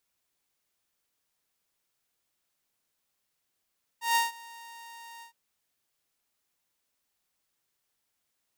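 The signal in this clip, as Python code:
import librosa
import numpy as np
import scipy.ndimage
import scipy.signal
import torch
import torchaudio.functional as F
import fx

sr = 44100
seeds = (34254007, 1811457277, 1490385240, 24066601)

y = fx.adsr_tone(sr, wave='saw', hz=928.0, attack_ms=146.0, decay_ms=158.0, sustain_db=-23.5, held_s=1.21, release_ms=105.0, level_db=-18.5)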